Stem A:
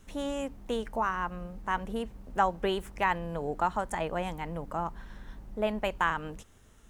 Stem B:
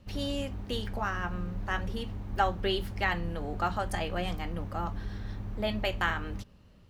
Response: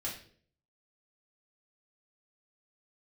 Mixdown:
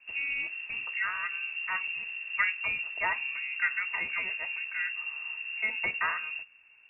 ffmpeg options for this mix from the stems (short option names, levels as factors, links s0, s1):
-filter_complex "[0:a]lowpass=f=1800:w=0.5412,lowpass=f=1800:w=1.3066,volume=0.376[s0];[1:a]equalizer=f=900:t=o:w=0.39:g=3.5,volume=0.75[s1];[s0][s1]amix=inputs=2:normalize=0,lowpass=f=2400:t=q:w=0.5098,lowpass=f=2400:t=q:w=0.6013,lowpass=f=2400:t=q:w=0.9,lowpass=f=2400:t=q:w=2.563,afreqshift=-2800"